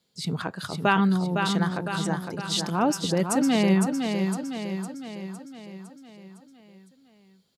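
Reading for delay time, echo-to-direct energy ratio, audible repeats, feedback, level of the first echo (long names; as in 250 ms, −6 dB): 508 ms, −4.0 dB, 6, 55%, −5.5 dB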